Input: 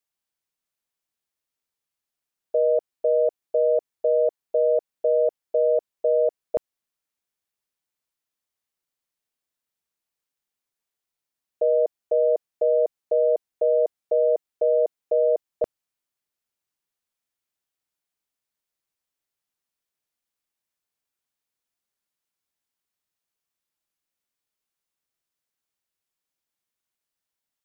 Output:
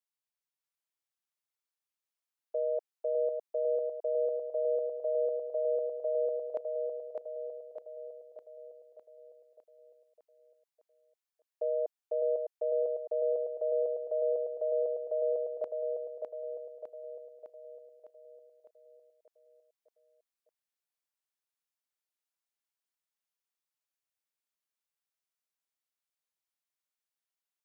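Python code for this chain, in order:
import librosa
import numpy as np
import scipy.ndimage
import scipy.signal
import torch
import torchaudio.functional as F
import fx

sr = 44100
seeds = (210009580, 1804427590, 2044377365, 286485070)

p1 = scipy.signal.sosfilt(scipy.signal.butter(2, 500.0, 'highpass', fs=sr, output='sos'), x)
p2 = p1 + fx.echo_feedback(p1, sr, ms=606, feedback_pct=56, wet_db=-4, dry=0)
y = p2 * 10.0 ** (-9.0 / 20.0)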